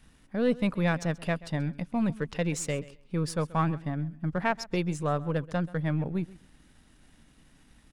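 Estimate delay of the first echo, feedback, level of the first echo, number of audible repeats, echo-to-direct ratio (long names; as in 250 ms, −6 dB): 132 ms, 17%, −19.5 dB, 2, −19.5 dB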